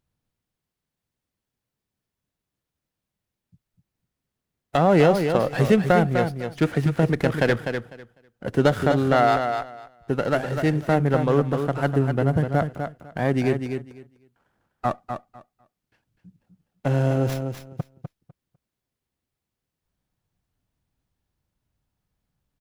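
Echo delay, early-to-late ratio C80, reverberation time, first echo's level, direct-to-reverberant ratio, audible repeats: 250 ms, no reverb audible, no reverb audible, −7.0 dB, no reverb audible, 2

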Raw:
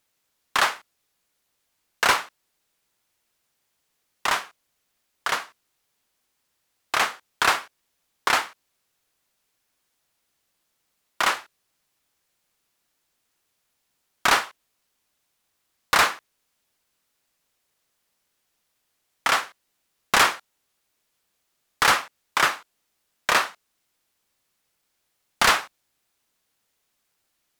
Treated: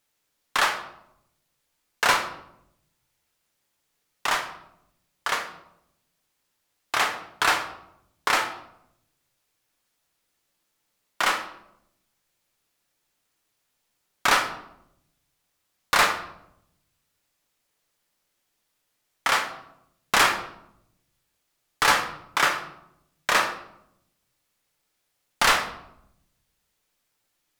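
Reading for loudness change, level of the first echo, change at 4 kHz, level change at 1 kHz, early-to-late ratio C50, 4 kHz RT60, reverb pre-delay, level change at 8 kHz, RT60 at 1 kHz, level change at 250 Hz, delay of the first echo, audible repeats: −1.0 dB, no echo audible, −1.0 dB, −0.5 dB, 9.0 dB, 0.50 s, 7 ms, −1.0 dB, 0.75 s, 0.0 dB, no echo audible, no echo audible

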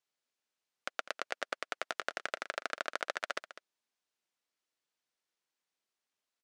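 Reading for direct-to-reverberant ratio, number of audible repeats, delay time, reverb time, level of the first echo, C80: no reverb audible, 1, 201 ms, no reverb audible, −14.0 dB, no reverb audible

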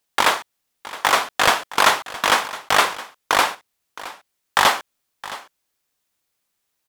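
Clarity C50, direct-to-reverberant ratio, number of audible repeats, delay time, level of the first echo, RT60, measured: no reverb audible, no reverb audible, 1, 667 ms, −17.0 dB, no reverb audible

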